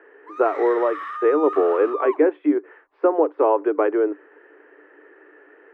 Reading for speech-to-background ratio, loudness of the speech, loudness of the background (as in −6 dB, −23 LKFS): 11.5 dB, −20.5 LKFS, −32.0 LKFS